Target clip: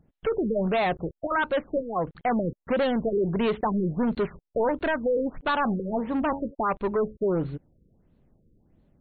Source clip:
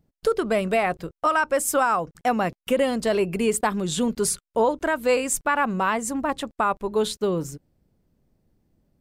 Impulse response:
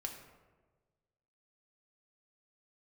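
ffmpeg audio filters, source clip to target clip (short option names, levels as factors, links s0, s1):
-filter_complex "[0:a]asplit=3[s0][s1][s2];[s0]afade=t=out:st=5.42:d=0.02[s3];[s1]bandreject=f=92.63:t=h:w=4,bandreject=f=185.26:t=h:w=4,bandreject=f=277.89:t=h:w=4,bandreject=f=370.52:t=h:w=4,bandreject=f=463.15:t=h:w=4,bandreject=f=555.78:t=h:w=4,bandreject=f=648.41:t=h:w=4,bandreject=f=741.04:t=h:w=4,bandreject=f=833.67:t=h:w=4,bandreject=f=926.3:t=h:w=4,afade=t=in:st=5.42:d=0.02,afade=t=out:st=6.53:d=0.02[s4];[s2]afade=t=in:st=6.53:d=0.02[s5];[s3][s4][s5]amix=inputs=3:normalize=0,asoftclip=type=tanh:threshold=0.0562,afftfilt=real='re*lt(b*sr/1024,530*pow(4500/530,0.5+0.5*sin(2*PI*1.5*pts/sr)))':imag='im*lt(b*sr/1024,530*pow(4500/530,0.5+0.5*sin(2*PI*1.5*pts/sr)))':win_size=1024:overlap=0.75,volume=1.68"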